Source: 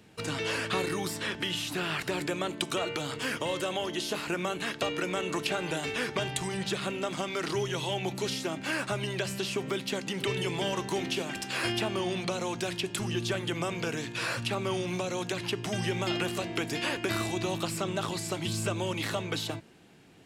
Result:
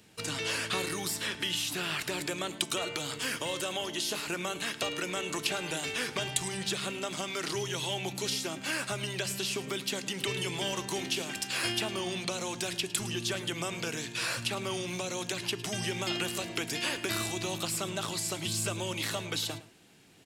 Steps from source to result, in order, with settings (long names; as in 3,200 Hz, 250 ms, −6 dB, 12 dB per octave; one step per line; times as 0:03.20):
high-shelf EQ 3,000 Hz +10.5 dB
single-tap delay 108 ms −16.5 dB
level −4.5 dB